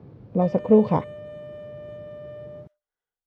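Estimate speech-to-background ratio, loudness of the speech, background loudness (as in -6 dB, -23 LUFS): 19.0 dB, -21.5 LUFS, -40.5 LUFS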